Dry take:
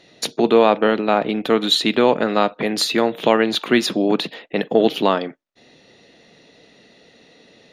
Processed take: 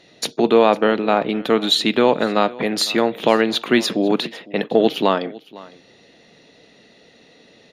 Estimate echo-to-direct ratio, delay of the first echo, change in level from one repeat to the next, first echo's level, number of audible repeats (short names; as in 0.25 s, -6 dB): -21.0 dB, 0.505 s, no steady repeat, -21.0 dB, 1